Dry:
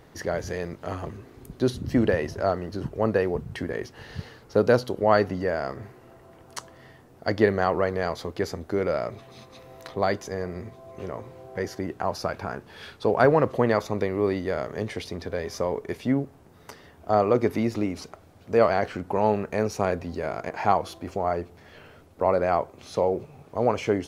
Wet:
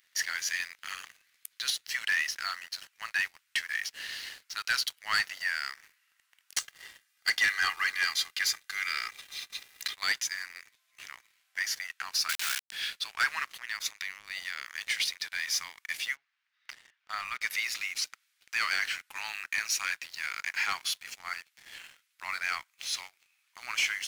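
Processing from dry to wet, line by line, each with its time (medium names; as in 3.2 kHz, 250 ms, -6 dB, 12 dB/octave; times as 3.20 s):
6.58–9.96 s: comb 2.5 ms, depth 93%
12.29–12.72 s: word length cut 6-bit, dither none
13.47–14.81 s: compression 5:1, threshold -27 dBFS
16.15–17.41 s: distance through air 210 m
whole clip: inverse Chebyshev high-pass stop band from 550 Hz, stop band 60 dB; waveshaping leveller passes 3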